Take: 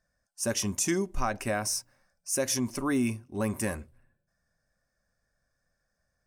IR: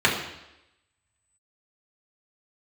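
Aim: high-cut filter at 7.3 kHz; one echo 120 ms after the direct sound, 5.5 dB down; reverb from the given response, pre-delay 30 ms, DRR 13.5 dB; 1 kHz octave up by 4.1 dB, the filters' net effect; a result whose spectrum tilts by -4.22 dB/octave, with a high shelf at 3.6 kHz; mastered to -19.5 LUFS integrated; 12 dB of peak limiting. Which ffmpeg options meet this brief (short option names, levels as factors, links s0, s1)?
-filter_complex "[0:a]lowpass=7300,equalizer=f=1000:t=o:g=6,highshelf=f=3600:g=-5,alimiter=level_in=1.12:limit=0.0631:level=0:latency=1,volume=0.891,aecho=1:1:120:0.531,asplit=2[s0][s1];[1:a]atrim=start_sample=2205,adelay=30[s2];[s1][s2]afir=irnorm=-1:irlink=0,volume=0.0237[s3];[s0][s3]amix=inputs=2:normalize=0,volume=5.31"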